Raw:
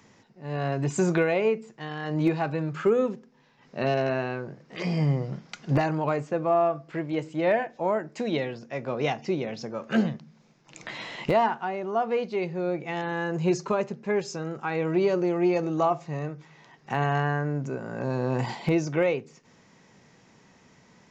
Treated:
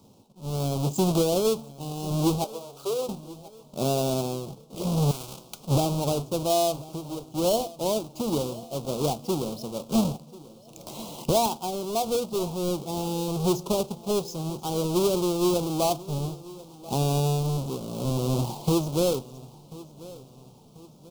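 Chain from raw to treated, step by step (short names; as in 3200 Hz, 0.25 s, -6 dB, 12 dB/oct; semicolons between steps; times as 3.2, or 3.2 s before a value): half-waves squared off; 2.44–3.09 ladder high-pass 370 Hz, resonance 30%; 6.88–7.34 compressor, threshold -30 dBFS, peak gain reduction 9.5 dB; Butterworth band-stop 1800 Hz, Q 0.78; feedback echo 1.039 s, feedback 46%, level -19.5 dB; 5.11–5.67 spectral compressor 2:1; gain -3 dB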